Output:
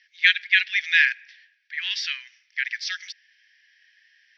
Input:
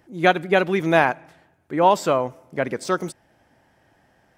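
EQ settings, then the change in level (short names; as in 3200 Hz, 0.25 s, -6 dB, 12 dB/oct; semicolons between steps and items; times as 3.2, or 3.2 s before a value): Chebyshev band-pass 1700–5700 Hz, order 5; +9.0 dB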